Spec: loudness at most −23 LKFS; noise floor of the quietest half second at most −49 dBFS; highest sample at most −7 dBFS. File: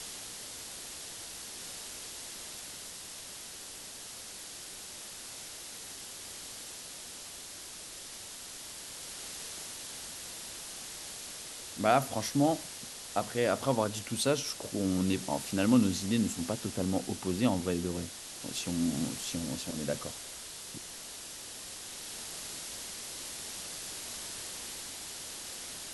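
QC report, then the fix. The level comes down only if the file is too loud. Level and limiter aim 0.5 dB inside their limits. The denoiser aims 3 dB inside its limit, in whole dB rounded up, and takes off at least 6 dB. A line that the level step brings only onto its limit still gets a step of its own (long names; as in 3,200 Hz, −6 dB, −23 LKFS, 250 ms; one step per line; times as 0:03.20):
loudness −35.5 LKFS: in spec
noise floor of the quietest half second −46 dBFS: out of spec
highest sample −13.0 dBFS: in spec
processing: broadband denoise 6 dB, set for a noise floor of −46 dBFS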